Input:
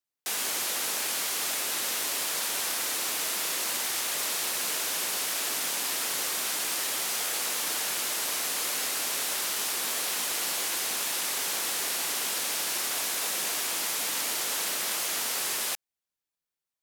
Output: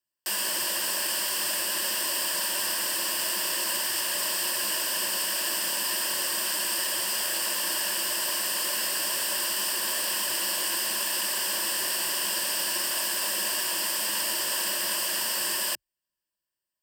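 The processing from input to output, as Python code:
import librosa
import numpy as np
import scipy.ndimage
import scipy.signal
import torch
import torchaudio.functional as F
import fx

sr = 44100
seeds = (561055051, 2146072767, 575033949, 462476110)

y = fx.ripple_eq(x, sr, per_octave=1.3, db=12)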